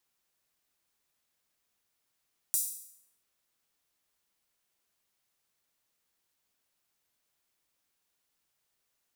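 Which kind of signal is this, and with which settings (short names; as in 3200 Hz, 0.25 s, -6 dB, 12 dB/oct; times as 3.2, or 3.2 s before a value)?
open hi-hat length 0.69 s, high-pass 8200 Hz, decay 0.71 s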